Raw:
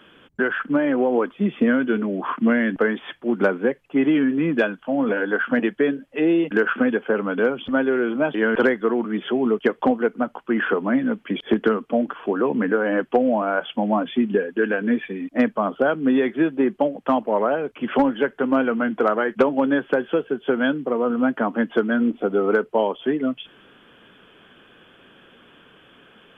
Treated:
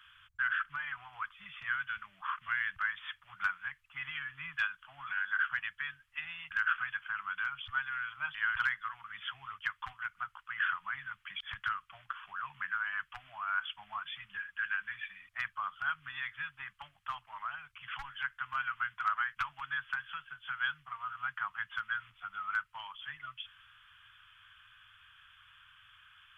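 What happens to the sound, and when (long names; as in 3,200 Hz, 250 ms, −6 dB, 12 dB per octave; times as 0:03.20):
0:16.91–0:18.18: parametric band 1,400 Hz −3.5 dB 1.5 octaves
whole clip: elliptic band-stop filter 100–1,200 Hz, stop band 50 dB; dynamic equaliser 530 Hz, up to −6 dB, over −48 dBFS, Q 1.2; level −5.5 dB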